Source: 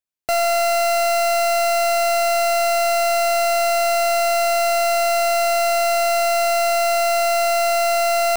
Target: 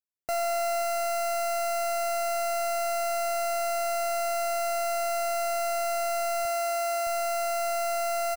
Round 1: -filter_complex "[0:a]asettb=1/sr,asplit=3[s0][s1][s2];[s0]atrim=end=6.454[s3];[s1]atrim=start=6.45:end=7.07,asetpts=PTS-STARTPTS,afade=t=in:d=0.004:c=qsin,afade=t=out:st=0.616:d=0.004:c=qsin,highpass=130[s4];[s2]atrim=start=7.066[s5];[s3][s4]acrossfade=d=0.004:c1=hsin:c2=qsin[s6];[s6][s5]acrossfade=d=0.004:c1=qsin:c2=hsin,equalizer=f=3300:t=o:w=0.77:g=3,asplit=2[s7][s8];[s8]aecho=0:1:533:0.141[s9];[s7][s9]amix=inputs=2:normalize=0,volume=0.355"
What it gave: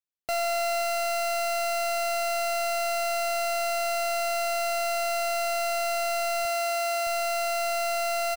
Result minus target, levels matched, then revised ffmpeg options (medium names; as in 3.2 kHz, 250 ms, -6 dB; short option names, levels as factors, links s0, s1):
4 kHz band +4.5 dB
-filter_complex "[0:a]asettb=1/sr,asplit=3[s0][s1][s2];[s0]atrim=end=6.454[s3];[s1]atrim=start=6.45:end=7.07,asetpts=PTS-STARTPTS,afade=t=in:d=0.004:c=qsin,afade=t=out:st=0.616:d=0.004:c=qsin,highpass=130[s4];[s2]atrim=start=7.066[s5];[s3][s4]acrossfade=d=0.004:c1=hsin:c2=qsin[s6];[s6][s5]acrossfade=d=0.004:c1=qsin:c2=hsin,equalizer=f=3300:t=o:w=0.77:g=-8.5,asplit=2[s7][s8];[s8]aecho=0:1:533:0.141[s9];[s7][s9]amix=inputs=2:normalize=0,volume=0.355"